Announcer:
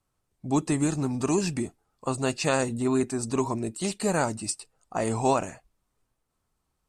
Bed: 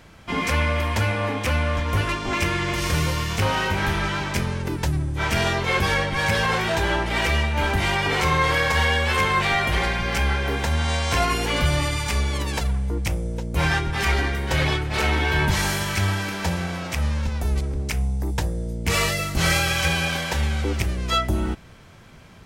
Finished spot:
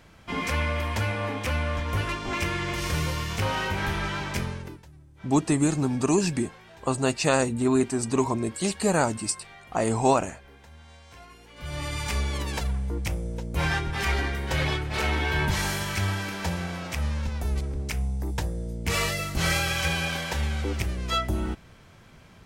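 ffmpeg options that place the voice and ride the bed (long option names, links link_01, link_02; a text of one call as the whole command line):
ffmpeg -i stem1.wav -i stem2.wav -filter_complex "[0:a]adelay=4800,volume=2.5dB[link_01];[1:a]volume=17.5dB,afade=type=out:start_time=4.43:duration=0.4:silence=0.0794328,afade=type=in:start_time=11.56:duration=0.49:silence=0.0749894[link_02];[link_01][link_02]amix=inputs=2:normalize=0" out.wav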